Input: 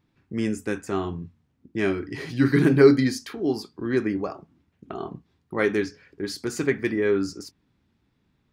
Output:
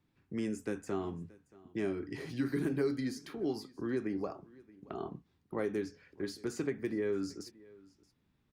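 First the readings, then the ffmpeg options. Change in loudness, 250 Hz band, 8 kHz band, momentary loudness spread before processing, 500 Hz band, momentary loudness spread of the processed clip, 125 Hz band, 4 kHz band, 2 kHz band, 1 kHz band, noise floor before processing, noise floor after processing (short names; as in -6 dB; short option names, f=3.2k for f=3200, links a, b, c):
-13.0 dB, -11.5 dB, -11.5 dB, 18 LU, -13.0 dB, 13 LU, -14.5 dB, -12.5 dB, -16.0 dB, -11.5 dB, -70 dBFS, -75 dBFS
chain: -filter_complex "[0:a]acrossover=split=170|900|7500[a][b][c][d];[a]acompressor=threshold=-42dB:ratio=4[e];[b]acompressor=threshold=-25dB:ratio=4[f];[c]acompressor=threshold=-42dB:ratio=4[g];[d]acompressor=threshold=-50dB:ratio=4[h];[e][f][g][h]amix=inputs=4:normalize=0,aecho=1:1:627:0.0708,volume=-6.5dB" -ar 48000 -c:a libopus -b:a 64k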